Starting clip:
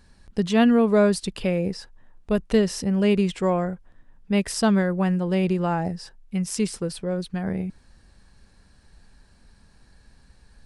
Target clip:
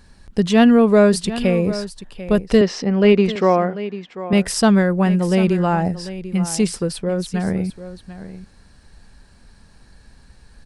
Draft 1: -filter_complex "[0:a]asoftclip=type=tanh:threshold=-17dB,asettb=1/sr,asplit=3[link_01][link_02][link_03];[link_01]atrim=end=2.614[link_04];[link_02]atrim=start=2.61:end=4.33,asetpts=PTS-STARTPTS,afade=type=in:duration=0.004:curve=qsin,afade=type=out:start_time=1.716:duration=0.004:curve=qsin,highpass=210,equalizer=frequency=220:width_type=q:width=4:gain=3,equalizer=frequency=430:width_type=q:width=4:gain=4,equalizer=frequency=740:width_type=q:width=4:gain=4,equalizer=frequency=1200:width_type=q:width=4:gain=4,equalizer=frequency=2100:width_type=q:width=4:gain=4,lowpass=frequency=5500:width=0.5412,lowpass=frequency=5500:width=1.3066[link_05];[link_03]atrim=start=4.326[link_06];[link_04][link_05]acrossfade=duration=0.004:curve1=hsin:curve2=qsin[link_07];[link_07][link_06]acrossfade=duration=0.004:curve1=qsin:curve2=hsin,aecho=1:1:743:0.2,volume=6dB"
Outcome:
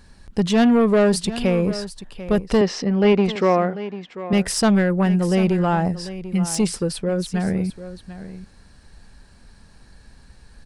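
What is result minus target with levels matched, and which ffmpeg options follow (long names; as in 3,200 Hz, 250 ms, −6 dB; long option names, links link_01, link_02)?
soft clipping: distortion +17 dB
-filter_complex "[0:a]asoftclip=type=tanh:threshold=-5.5dB,asettb=1/sr,asplit=3[link_01][link_02][link_03];[link_01]atrim=end=2.614[link_04];[link_02]atrim=start=2.61:end=4.33,asetpts=PTS-STARTPTS,afade=type=in:duration=0.004:curve=qsin,afade=type=out:start_time=1.716:duration=0.004:curve=qsin,highpass=210,equalizer=frequency=220:width_type=q:width=4:gain=3,equalizer=frequency=430:width_type=q:width=4:gain=4,equalizer=frequency=740:width_type=q:width=4:gain=4,equalizer=frequency=1200:width_type=q:width=4:gain=4,equalizer=frequency=2100:width_type=q:width=4:gain=4,lowpass=frequency=5500:width=0.5412,lowpass=frequency=5500:width=1.3066[link_05];[link_03]atrim=start=4.326[link_06];[link_04][link_05]acrossfade=duration=0.004:curve1=hsin:curve2=qsin[link_07];[link_07][link_06]acrossfade=duration=0.004:curve1=qsin:curve2=hsin,aecho=1:1:743:0.2,volume=6dB"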